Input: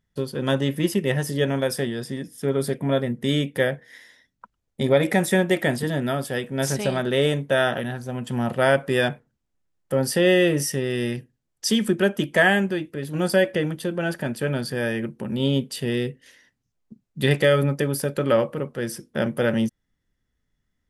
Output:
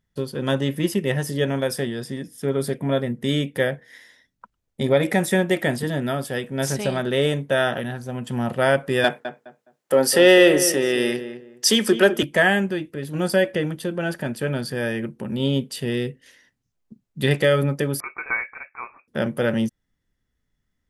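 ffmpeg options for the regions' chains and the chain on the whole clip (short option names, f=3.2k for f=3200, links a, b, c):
-filter_complex "[0:a]asettb=1/sr,asplit=3[a][b][c];[a]atrim=end=9.044[d];[b]atrim=start=9.04:end=12.23,asetpts=PTS-STARTPTS,afade=t=in:d=0.004:c=qsin,afade=t=out:st=3.186:d=0.004:c=qsin,highpass=330,acontrast=84,asplit=2[e][f];[f]adelay=208,lowpass=f=1.6k:p=1,volume=-10dB,asplit=2[g][h];[h]adelay=208,lowpass=f=1.6k:p=1,volume=0.25,asplit=2[i][j];[j]adelay=208,lowpass=f=1.6k:p=1,volume=0.25[k];[e][g][i][k]amix=inputs=4:normalize=0,atrim=end_sample=140679[l];[c]atrim=start=12.226[m];[d][l]acrossfade=d=0.004:c1=hsin:c2=qsin[n];[n][m]acrossfade=d=0.004:c1=qsin:c2=hsin,asettb=1/sr,asplit=3[o][p][q];[o]atrim=end=18.004[r];[p]atrim=start=18:end=19.08,asetpts=PTS-STARTPTS,afade=t=in:d=0.004:c=qsin,afade=t=out:st=1.076:d=0.004:c=qsin,highpass=710,tiltshelf=f=930:g=-5.5,lowpass=f=2.4k:t=q:w=0.5098,lowpass=f=2.4k:t=q:w=0.6013,lowpass=f=2.4k:t=q:w=0.9,lowpass=f=2.4k:t=q:w=2.563,afreqshift=-2800[s];[q]atrim=start=19.076[t];[r][s]acrossfade=d=0.004:c1=hsin:c2=qsin[u];[u][t]acrossfade=d=0.004:c1=qsin:c2=hsin"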